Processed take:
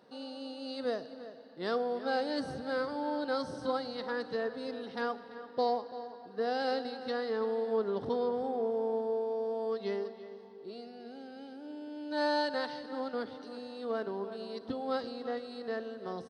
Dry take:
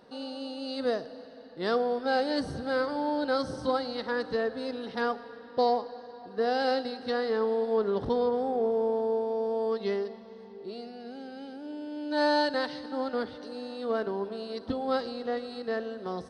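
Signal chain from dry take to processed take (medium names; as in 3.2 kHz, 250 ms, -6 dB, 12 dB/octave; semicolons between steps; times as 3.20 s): high-pass 110 Hz 12 dB/octave; echo from a far wall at 58 m, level -13 dB; trim -5 dB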